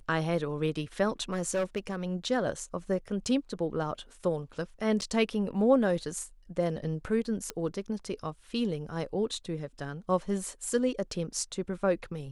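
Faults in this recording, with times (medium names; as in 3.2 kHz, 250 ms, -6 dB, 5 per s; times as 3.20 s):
1.32–2.04 s: clipped -25 dBFS
5.01–5.02 s: dropout 8.4 ms
7.50 s: pop -18 dBFS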